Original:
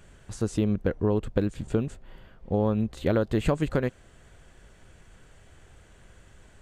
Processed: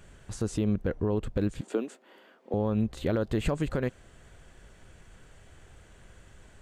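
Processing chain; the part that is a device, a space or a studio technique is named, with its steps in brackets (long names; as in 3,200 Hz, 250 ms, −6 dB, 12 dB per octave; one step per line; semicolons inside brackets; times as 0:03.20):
0:01.61–0:02.54: Butterworth high-pass 250 Hz 36 dB per octave
clipper into limiter (hard clipping −11 dBFS, distortion −33 dB; brickwall limiter −17 dBFS, peak gain reduction 6 dB)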